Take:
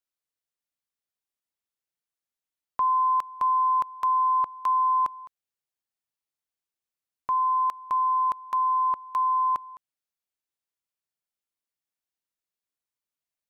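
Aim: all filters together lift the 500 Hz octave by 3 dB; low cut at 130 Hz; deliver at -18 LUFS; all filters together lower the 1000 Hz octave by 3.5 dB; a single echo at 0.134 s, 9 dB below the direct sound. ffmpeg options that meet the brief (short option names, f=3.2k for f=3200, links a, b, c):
-af "highpass=130,equalizer=f=500:t=o:g=5.5,equalizer=f=1k:t=o:g=-4.5,aecho=1:1:134:0.355,volume=8dB"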